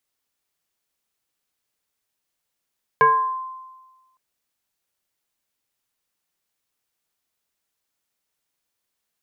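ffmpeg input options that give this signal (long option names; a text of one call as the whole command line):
ffmpeg -f lavfi -i "aevalsrc='0.335*pow(10,-3*t/1.29)*sin(2*PI*1040*t+1*pow(10,-3*t/0.64)*sin(2*PI*0.57*1040*t))':duration=1.16:sample_rate=44100" out.wav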